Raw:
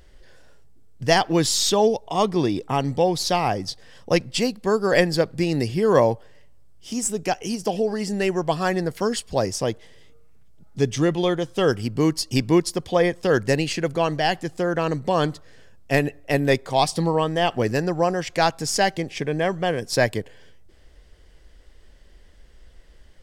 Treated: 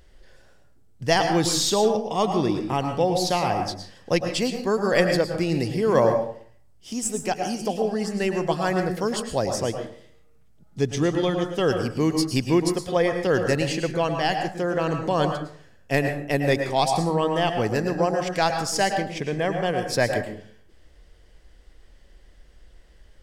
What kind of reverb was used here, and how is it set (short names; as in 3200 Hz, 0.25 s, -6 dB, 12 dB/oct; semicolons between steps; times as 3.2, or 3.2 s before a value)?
plate-style reverb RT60 0.52 s, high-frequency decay 0.55×, pre-delay 95 ms, DRR 5 dB; gain -2.5 dB